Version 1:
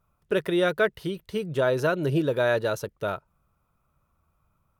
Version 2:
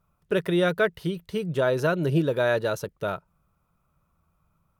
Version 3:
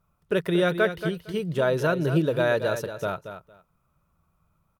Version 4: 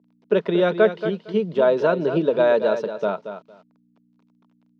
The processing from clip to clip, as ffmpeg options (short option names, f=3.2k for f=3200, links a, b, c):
-af "equalizer=f=170:t=o:w=0.23:g=7.5"
-af "aecho=1:1:229|458:0.316|0.0538"
-af "acrusher=bits=9:mix=0:aa=0.000001,aeval=exprs='val(0)+0.00178*(sin(2*PI*60*n/s)+sin(2*PI*2*60*n/s)/2+sin(2*PI*3*60*n/s)/3+sin(2*PI*4*60*n/s)/4+sin(2*PI*5*60*n/s)/5)':c=same,highpass=f=190:w=0.5412,highpass=f=190:w=1.3066,equalizer=f=210:t=q:w=4:g=10,equalizer=f=430:t=q:w=4:g=7,equalizer=f=630:t=q:w=4:g=6,equalizer=f=950:t=q:w=4:g=7,equalizer=f=1.8k:t=q:w=4:g=-3,lowpass=f=4.8k:w=0.5412,lowpass=f=4.8k:w=1.3066"